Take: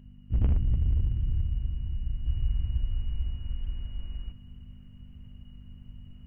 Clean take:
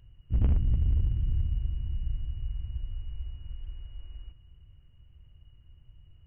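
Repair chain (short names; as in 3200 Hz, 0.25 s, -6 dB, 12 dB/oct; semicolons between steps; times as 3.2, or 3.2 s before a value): de-hum 49.3 Hz, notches 5; gain 0 dB, from 2.26 s -6.5 dB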